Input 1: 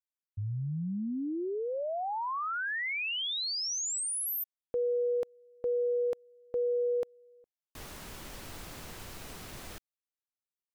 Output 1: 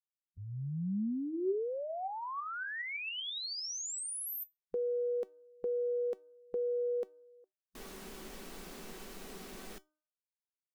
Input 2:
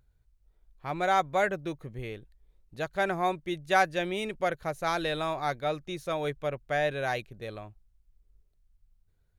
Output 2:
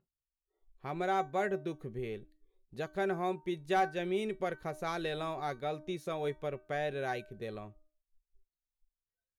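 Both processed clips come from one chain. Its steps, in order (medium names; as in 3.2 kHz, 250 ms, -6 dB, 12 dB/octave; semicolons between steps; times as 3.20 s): feedback comb 380 Hz, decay 0.17 s, harmonics all, mix 60%; de-hum 306.2 Hz, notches 5; spectral noise reduction 29 dB; in parallel at +1 dB: compression, threshold -43 dBFS; on the sum: saturation -16 dBFS; small resonant body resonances 210/400 Hz, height 7 dB, ringing for 25 ms; trim -4 dB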